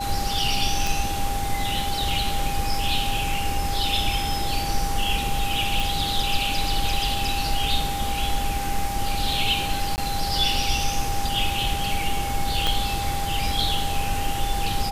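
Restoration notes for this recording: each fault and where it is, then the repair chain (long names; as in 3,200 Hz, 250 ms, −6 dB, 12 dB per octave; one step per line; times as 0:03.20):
whistle 800 Hz −28 dBFS
0:00.87: click
0:05.80: click
0:09.96–0:09.98: drop-out 19 ms
0:12.67: click −8 dBFS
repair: click removal
notch filter 800 Hz, Q 30
repair the gap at 0:09.96, 19 ms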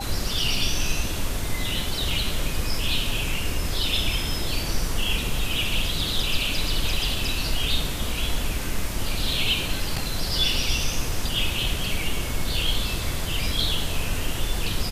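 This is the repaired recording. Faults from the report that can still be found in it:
0:12.67: click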